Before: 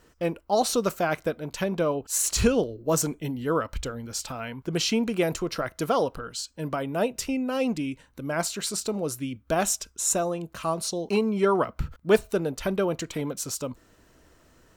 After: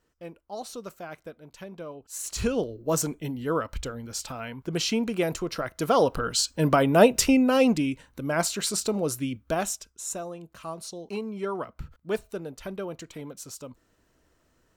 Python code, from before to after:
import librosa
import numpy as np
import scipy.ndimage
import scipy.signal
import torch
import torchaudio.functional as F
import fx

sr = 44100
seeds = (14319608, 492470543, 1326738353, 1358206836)

y = fx.gain(x, sr, db=fx.line((1.98, -14.0), (2.68, -1.5), (5.74, -1.5), (6.29, 9.0), (7.24, 9.0), (8.06, 2.0), (9.33, 2.0), (9.9, -9.0)))